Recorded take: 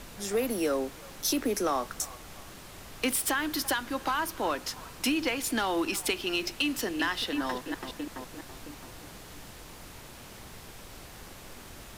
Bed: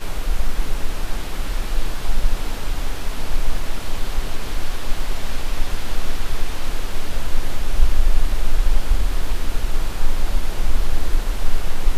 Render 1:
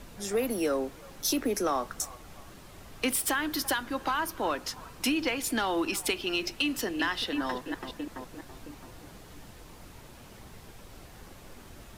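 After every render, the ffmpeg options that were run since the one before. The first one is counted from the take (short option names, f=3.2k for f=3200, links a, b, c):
-af "afftdn=nr=6:nf=-47"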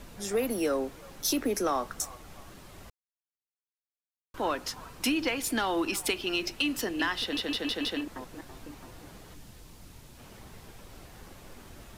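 -filter_complex "[0:a]asettb=1/sr,asplit=3[a][b][c];[a]atrim=end=9.344[d];[b]atrim=start=9.34:end=10.19,asetpts=PTS-STARTPTS,afade=t=in:d=0.004:c=qsin,afade=t=out:st=0.846:d=0.004:c=qsin,acrossover=split=260|3000[e][f][g];[f]acompressor=threshold=-57dB:ratio=6:attack=3.2:release=140:knee=2.83:detection=peak[h];[e][h][g]amix=inputs=3:normalize=0[i];[c]atrim=start=10.186[j];[d][i]acrossfade=d=0.004:c1=hsin:c2=qsin[k];[k][j]acrossfade=d=0.004:c1=qsin:c2=hsin,asplit=8[l][m][n][o][p][q][r][s];[l]atrim=end=2.9,asetpts=PTS-STARTPTS,afade=t=out:st=2.896:d=0.004:c=hsin[t];[m]atrim=start=2.9:end=4.34,asetpts=PTS-STARTPTS,volume=0[u];[n]atrim=start=4.34:end=7.372,asetpts=PTS-STARTPTS,afade=t=in:d=0.004:c=hsin[v];[o]atrim=start=7.208:end=7.372[w];[p]atrim=start=7.208:end=7.372[x];[q]atrim=start=7.208:end=7.372[y];[r]atrim=start=7.208:end=7.372[z];[s]atrim=start=8.008[aa];[t][u][v]concat=n=3:v=0:a=1[ab];[ab][w]acrossfade=d=0.004:c1=hsin:c2=hsin[ac];[ac][x]acrossfade=d=0.004:c1=hsin:c2=hsin[ad];[ad][y]acrossfade=d=0.004:c1=hsin:c2=hsin[ae];[ae][z]acrossfade=d=0.004:c1=hsin:c2=hsin[af];[af][aa]acrossfade=d=0.004:c1=hsin:c2=hsin"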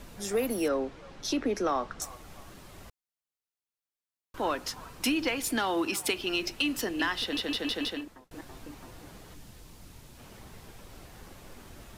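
-filter_complex "[0:a]asettb=1/sr,asplit=3[a][b][c];[a]atrim=end=0.684[d];[b]atrim=start=0.68:end=2.02,asetpts=PTS-STARTPTS,afade=t=in:d=0.004:c=qsin,afade=t=out:st=1.336:d=0.004:c=qsin,lowpass=4.6k[e];[c]atrim=start=2.016[f];[d][e]acrossfade=d=0.004:c1=hsin:c2=qsin[g];[g][f]acrossfade=d=0.004:c1=qsin:c2=hsin,asettb=1/sr,asplit=3[h][i][j];[h]atrim=end=5.574[k];[i]atrim=start=5.57:end=6.17,asetpts=PTS-STARTPTS,afade=t=in:d=0.004:c=qsin,afade=t=out:st=0.596:d=0.004:c=qsin,highpass=82[l];[j]atrim=start=6.166[m];[k][l]acrossfade=d=0.004:c1=hsin:c2=qsin[n];[n][m]acrossfade=d=0.004:c1=qsin:c2=hsin,asplit=2[o][p];[o]atrim=end=8.31,asetpts=PTS-STARTPTS,afade=t=out:st=7.81:d=0.5[q];[p]atrim=start=8.31,asetpts=PTS-STARTPTS,afade=t=in:d=0.004:c=hsin[r];[q][r]concat=n=2:v=0:a=1"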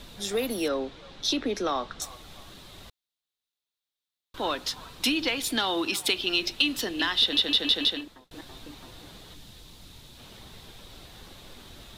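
-af "equalizer=f=3.7k:t=o:w=0.57:g=13.5"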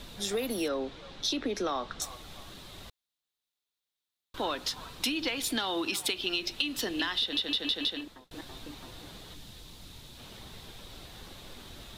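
-af "acompressor=threshold=-28dB:ratio=4"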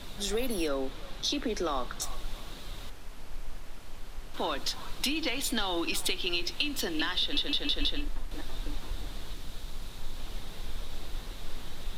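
-filter_complex "[1:a]volume=-19dB[a];[0:a][a]amix=inputs=2:normalize=0"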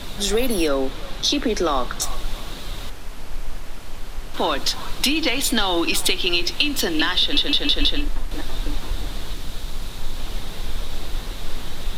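-af "volume=10.5dB"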